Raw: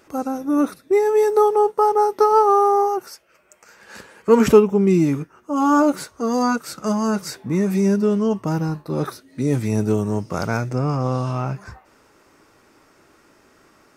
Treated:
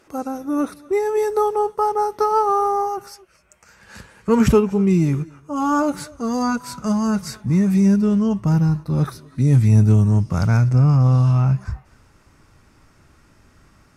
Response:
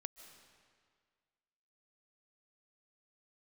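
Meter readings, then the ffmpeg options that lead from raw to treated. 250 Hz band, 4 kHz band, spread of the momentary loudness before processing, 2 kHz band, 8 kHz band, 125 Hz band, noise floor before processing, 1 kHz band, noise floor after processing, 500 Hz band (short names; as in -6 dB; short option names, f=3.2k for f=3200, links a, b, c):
+1.5 dB, -1.5 dB, 11 LU, -2.0 dB, -1.0 dB, +9.0 dB, -56 dBFS, -2.5 dB, -55 dBFS, -4.5 dB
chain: -filter_complex "[1:a]atrim=start_sample=2205,atrim=end_sample=6174,asetrate=23373,aresample=44100[a];[0:a][a]afir=irnorm=-1:irlink=0,asubboost=boost=8.5:cutoff=130"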